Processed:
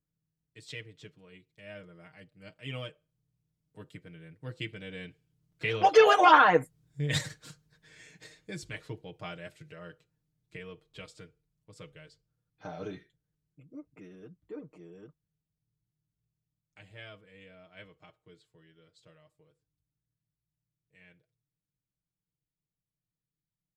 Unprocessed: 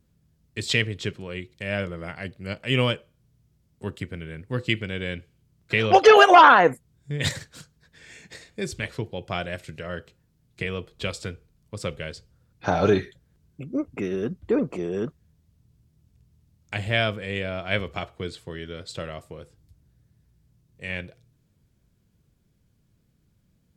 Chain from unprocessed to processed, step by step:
source passing by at 0:07.09, 6 m/s, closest 6.5 metres
comb filter 6.5 ms, depth 77%
level −6.5 dB

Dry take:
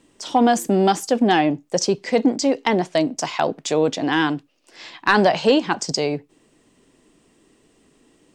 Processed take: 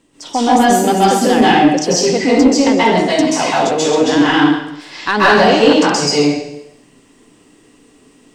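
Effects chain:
dense smooth reverb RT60 0.82 s, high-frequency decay 1×, pre-delay 120 ms, DRR −9 dB
soft clipping −1 dBFS, distortion −20 dB

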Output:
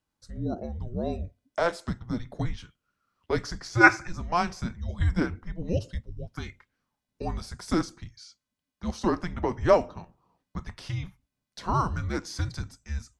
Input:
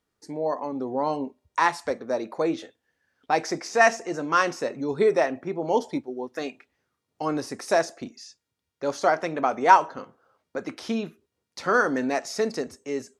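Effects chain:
frequency shifter −350 Hz
gain on a spectral selection 0:03.84–0:04.07, 610–2,700 Hz +12 dB
level −4 dB

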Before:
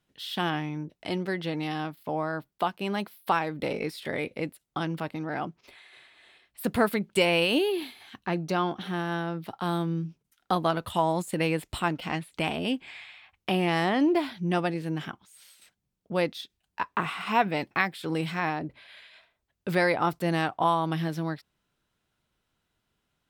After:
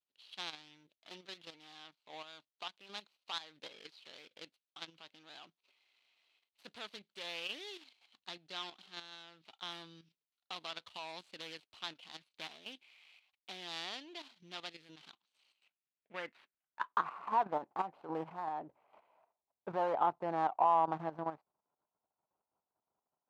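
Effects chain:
running median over 25 samples
output level in coarse steps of 10 dB
band-pass filter sweep 3,800 Hz → 860 Hz, 0:15.25–0:17.58
level +5.5 dB

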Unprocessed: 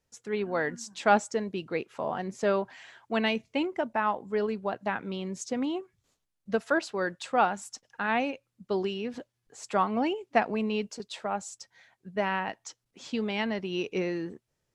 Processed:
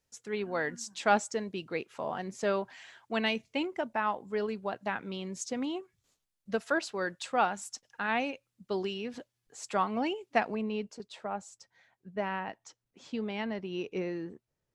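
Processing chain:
high-shelf EQ 2,100 Hz +5 dB, from 0:10.55 −5.5 dB
level −4 dB

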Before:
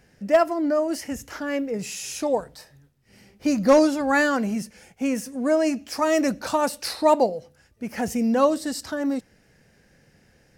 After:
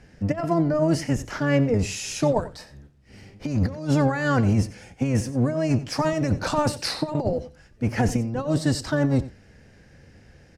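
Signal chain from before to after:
sub-octave generator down 1 octave, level +2 dB
high-shelf EQ 9,600 Hz +4.5 dB
compressor whose output falls as the input rises −22 dBFS, ratio −0.5
high-frequency loss of the air 65 metres
on a send: single-tap delay 91 ms −16.5 dB
on the sum: level +1.5 dB

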